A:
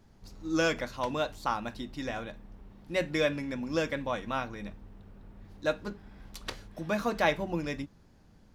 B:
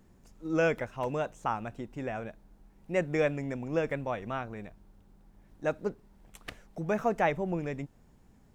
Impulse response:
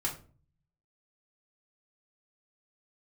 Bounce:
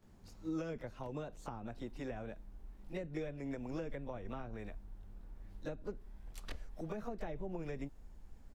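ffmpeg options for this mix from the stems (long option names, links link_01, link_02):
-filter_complex "[0:a]flanger=delay=16.5:depth=4.7:speed=1.5,volume=-5.5dB[link_01];[1:a]acrossover=split=210|840[link_02][link_03][link_04];[link_02]acompressor=threshold=-43dB:ratio=4[link_05];[link_03]acompressor=threshold=-35dB:ratio=4[link_06];[link_04]acompressor=threshold=-46dB:ratio=4[link_07];[link_05][link_06][link_07]amix=inputs=3:normalize=0,asubboost=boost=7:cutoff=52,adelay=26,volume=-3dB,asplit=2[link_08][link_09];[link_09]apad=whole_len=376788[link_10];[link_01][link_10]sidechaincompress=threshold=-46dB:ratio=8:attack=46:release=1060[link_11];[link_11][link_08]amix=inputs=2:normalize=0,acrossover=split=390[link_12][link_13];[link_13]acompressor=threshold=-45dB:ratio=6[link_14];[link_12][link_14]amix=inputs=2:normalize=0"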